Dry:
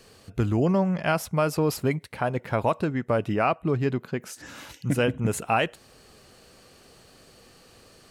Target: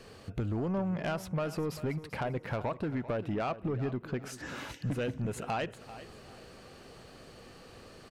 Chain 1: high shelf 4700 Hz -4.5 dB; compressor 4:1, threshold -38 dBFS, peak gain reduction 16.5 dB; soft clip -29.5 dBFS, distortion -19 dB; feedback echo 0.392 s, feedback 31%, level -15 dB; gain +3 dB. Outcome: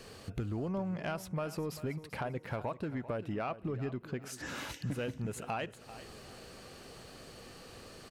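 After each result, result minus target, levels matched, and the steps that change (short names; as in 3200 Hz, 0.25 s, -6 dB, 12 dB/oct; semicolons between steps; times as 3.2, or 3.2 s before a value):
compressor: peak gain reduction +5.5 dB; 8000 Hz band +4.5 dB
change: compressor 4:1, threshold -31 dBFS, peak gain reduction 11 dB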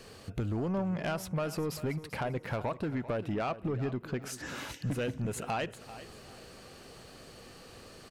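8000 Hz band +4.5 dB
change: high shelf 4700 Hz -11.5 dB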